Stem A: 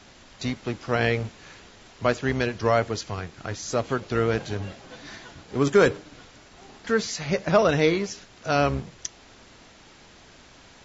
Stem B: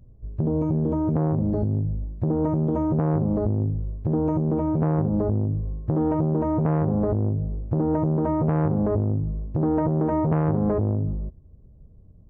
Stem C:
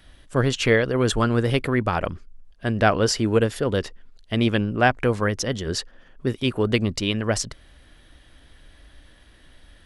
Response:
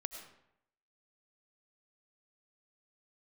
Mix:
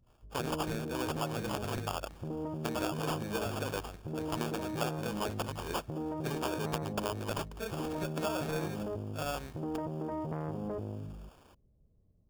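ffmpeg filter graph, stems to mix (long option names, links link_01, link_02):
-filter_complex "[0:a]equalizer=frequency=2800:width_type=o:width=2.8:gain=8,adelay=700,volume=-13.5dB[link_01];[1:a]volume=-12dB[link_02];[2:a]agate=range=-33dB:threshold=-38dB:ratio=3:detection=peak,tiltshelf=frequency=720:gain=-9,volume=-5dB[link_03];[link_01][link_03]amix=inputs=2:normalize=0,acrusher=samples=22:mix=1:aa=0.000001,acompressor=threshold=-31dB:ratio=12,volume=0dB[link_04];[link_02][link_04]amix=inputs=2:normalize=0,lowshelf=frequency=230:gain=-7"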